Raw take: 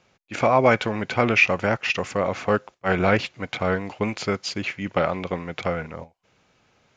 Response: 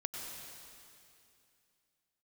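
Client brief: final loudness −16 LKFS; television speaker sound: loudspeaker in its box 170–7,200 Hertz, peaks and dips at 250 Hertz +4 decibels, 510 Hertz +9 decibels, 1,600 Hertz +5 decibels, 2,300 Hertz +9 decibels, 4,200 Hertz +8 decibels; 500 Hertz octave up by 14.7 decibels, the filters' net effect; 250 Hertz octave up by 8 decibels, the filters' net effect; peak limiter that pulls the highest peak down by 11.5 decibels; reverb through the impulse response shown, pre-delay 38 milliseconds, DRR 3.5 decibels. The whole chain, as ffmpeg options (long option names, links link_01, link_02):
-filter_complex "[0:a]equalizer=frequency=250:width_type=o:gain=5.5,equalizer=frequency=500:width_type=o:gain=8.5,alimiter=limit=-11.5dB:level=0:latency=1,asplit=2[link_01][link_02];[1:a]atrim=start_sample=2205,adelay=38[link_03];[link_02][link_03]afir=irnorm=-1:irlink=0,volume=-4dB[link_04];[link_01][link_04]amix=inputs=2:normalize=0,highpass=frequency=170:width=0.5412,highpass=frequency=170:width=1.3066,equalizer=frequency=250:width_type=q:width=4:gain=4,equalizer=frequency=510:width_type=q:width=4:gain=9,equalizer=frequency=1600:width_type=q:width=4:gain=5,equalizer=frequency=2300:width_type=q:width=4:gain=9,equalizer=frequency=4200:width_type=q:width=4:gain=8,lowpass=frequency=7200:width=0.5412,lowpass=frequency=7200:width=1.3066"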